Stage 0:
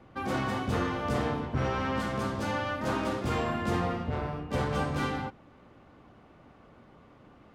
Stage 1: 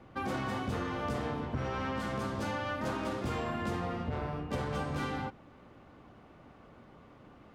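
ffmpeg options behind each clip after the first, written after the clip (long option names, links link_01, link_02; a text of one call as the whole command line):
ffmpeg -i in.wav -af "acompressor=threshold=-31dB:ratio=6" out.wav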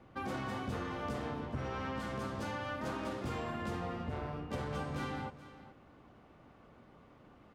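ffmpeg -i in.wav -af "aecho=1:1:426:0.168,volume=-4dB" out.wav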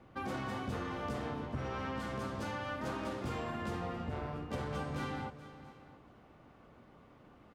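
ffmpeg -i in.wav -af "aecho=1:1:683:0.1" out.wav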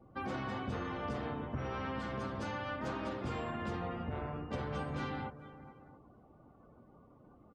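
ffmpeg -i in.wav -af "afftdn=noise_reduction=19:noise_floor=-59" out.wav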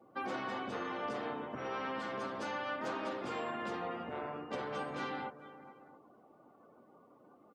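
ffmpeg -i in.wav -af "highpass=300,volume=2dB" out.wav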